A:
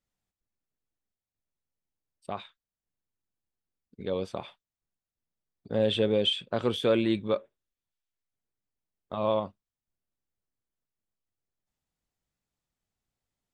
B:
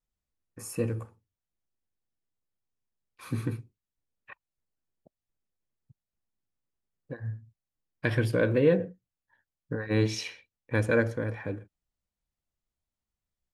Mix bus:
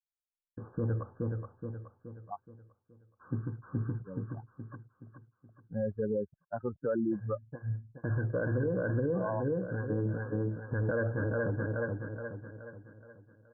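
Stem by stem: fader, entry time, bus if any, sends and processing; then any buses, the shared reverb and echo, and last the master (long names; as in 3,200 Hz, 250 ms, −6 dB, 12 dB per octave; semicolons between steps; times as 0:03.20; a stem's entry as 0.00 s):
+1.5 dB, 0.00 s, no send, no echo send, spectral dynamics exaggerated over time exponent 3
+1.0 dB, 0.00 s, no send, echo send −5 dB, downward expander −51 dBFS; phase shifter 1.5 Hz, delay 1.9 ms, feedback 42%; automatic ducking −9 dB, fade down 1.20 s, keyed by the first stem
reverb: not used
echo: repeating echo 423 ms, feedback 45%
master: linear-phase brick-wall low-pass 1,700 Hz; brickwall limiter −23.5 dBFS, peak gain reduction 13.5 dB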